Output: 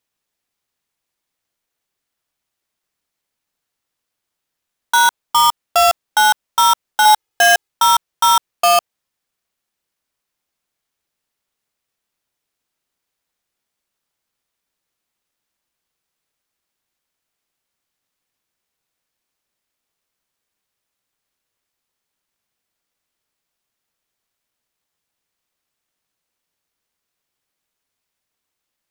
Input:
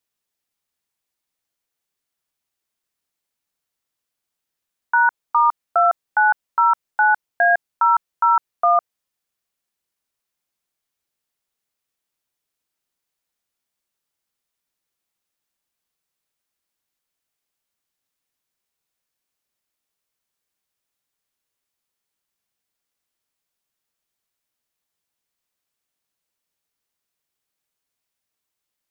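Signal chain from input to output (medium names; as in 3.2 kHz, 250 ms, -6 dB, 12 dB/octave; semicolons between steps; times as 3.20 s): square wave that keeps the level; 7.05–7.69 s: comb 2.4 ms, depth 73%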